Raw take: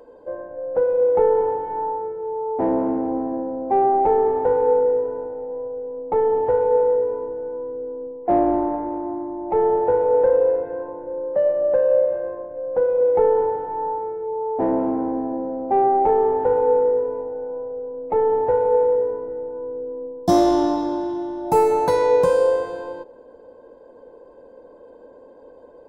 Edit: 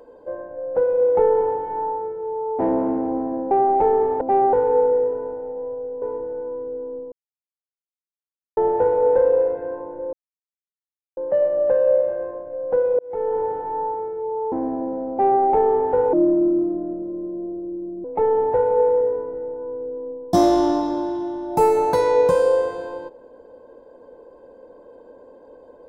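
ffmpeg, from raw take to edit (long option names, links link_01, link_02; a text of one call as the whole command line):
ffmpeg -i in.wav -filter_complex "[0:a]asplit=12[link_01][link_02][link_03][link_04][link_05][link_06][link_07][link_08][link_09][link_10][link_11][link_12];[link_01]atrim=end=3.512[link_13];[link_02]atrim=start=3.758:end=4.462[link_14];[link_03]atrim=start=15.628:end=15.952[link_15];[link_04]atrim=start=4.458:end=5.952[link_16];[link_05]atrim=start=7.098:end=8.2,asetpts=PTS-STARTPTS,afade=type=out:start_time=1.098:duration=0.004:curve=hsin[link_17];[link_06]atrim=start=8.2:end=9.65,asetpts=PTS-STARTPTS,volume=0[link_18];[link_07]atrim=start=9.65:end=11.21,asetpts=PTS-STARTPTS,afade=type=in:duration=0.004:curve=hsin,afade=type=out:start_time=1.556:duration=0.004:curve=hsin,apad=pad_dur=1.04[link_19];[link_08]atrim=start=11.21:end=13.03,asetpts=PTS-STARTPTS,afade=type=in:duration=0.004:curve=hsin,afade=type=out:start_time=1.816:duration=0.004:curve=hsin[link_20];[link_09]atrim=start=13.03:end=14.562,asetpts=PTS-STARTPTS,afade=type=in:duration=0.55[link_21];[link_10]atrim=start=15.038:end=16.654[link_22];[link_11]atrim=start=16.65:end=17.99,asetpts=PTS-STARTPTS,asetrate=30870,aresample=44100[link_23];[link_12]atrim=start=17.986[link_24];[link_13][link_14]acrossfade=duration=0.004:curve1=hsin:curve2=hsin[link_25];[link_25][link_15]acrossfade=duration=0.004:curve1=hsin:curve2=hsin[link_26];[link_26][link_16]acrossfade=duration=0.004:curve1=hsin:curve2=hsin[link_27];[link_17][link_18][link_19][link_20][link_21]concat=n=5:v=0:a=1[link_28];[link_27][link_28]acrossfade=duration=0.004:curve1=hsin:curve2=hsin[link_29];[link_29][link_22]acrossfade=duration=0.004:curve1=hsin:curve2=hsin[link_30];[link_30][link_23]acrossfade=duration=0.004:curve1=hsin:curve2=hsin[link_31];[link_31][link_24]acrossfade=duration=0.004:curve1=hsin:curve2=hsin" out.wav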